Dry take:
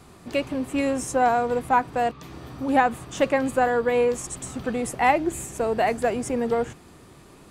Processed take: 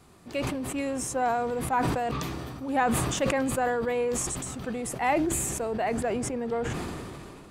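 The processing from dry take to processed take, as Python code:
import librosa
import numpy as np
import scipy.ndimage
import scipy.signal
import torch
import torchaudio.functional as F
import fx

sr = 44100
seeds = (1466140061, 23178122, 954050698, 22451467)

y = fx.high_shelf(x, sr, hz=5600.0, db=fx.steps((0.0, 2.0), (5.71, -7.0)))
y = fx.sustainer(y, sr, db_per_s=23.0)
y = F.gain(torch.from_numpy(y), -7.0).numpy()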